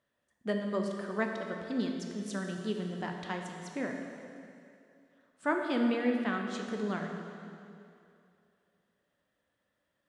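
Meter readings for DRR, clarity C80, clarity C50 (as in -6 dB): 2.0 dB, 4.5 dB, 3.5 dB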